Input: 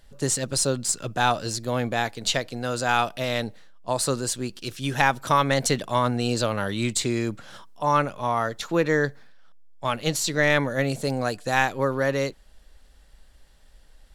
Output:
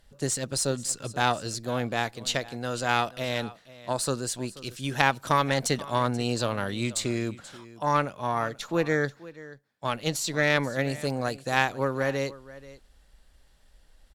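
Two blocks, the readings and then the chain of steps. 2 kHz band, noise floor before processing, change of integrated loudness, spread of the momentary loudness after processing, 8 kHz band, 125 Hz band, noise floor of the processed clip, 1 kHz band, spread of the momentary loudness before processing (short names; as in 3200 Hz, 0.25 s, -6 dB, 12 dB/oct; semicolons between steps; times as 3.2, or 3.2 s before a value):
-2.5 dB, -53 dBFS, -3.0 dB, 11 LU, -4.0 dB, -3.0 dB, -59 dBFS, -3.0 dB, 8 LU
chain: echo 0.483 s -18 dB; added harmonics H 2 -7 dB, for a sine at -2 dBFS; gain -4 dB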